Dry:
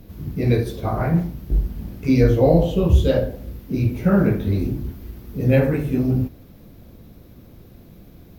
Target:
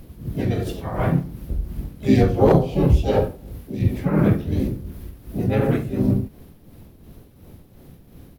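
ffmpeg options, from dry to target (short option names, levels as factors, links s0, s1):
-filter_complex "[0:a]tremolo=f=2.8:d=0.57,aeval=exprs='0.501*(abs(mod(val(0)/0.501+3,4)-2)-1)':c=same,asplit=4[s0][s1][s2][s3];[s1]asetrate=35002,aresample=44100,atempo=1.25992,volume=0.891[s4];[s2]asetrate=52444,aresample=44100,atempo=0.840896,volume=0.178[s5];[s3]asetrate=66075,aresample=44100,atempo=0.66742,volume=0.447[s6];[s0][s4][s5][s6]amix=inputs=4:normalize=0,volume=0.841"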